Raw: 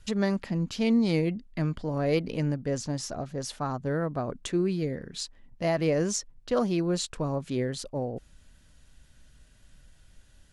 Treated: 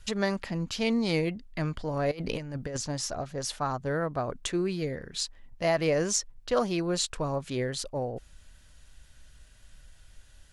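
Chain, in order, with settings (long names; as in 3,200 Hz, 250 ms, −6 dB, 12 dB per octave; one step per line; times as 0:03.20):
0:02.11–0:02.77: compressor whose output falls as the input rises −31 dBFS, ratio −0.5
parametric band 220 Hz −8 dB 2 octaves
level +3.5 dB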